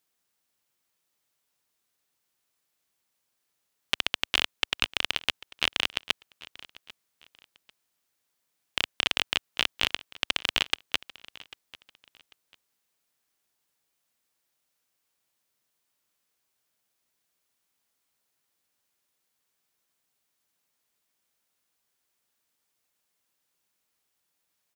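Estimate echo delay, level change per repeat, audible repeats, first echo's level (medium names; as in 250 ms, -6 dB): 794 ms, -11.0 dB, 2, -20.5 dB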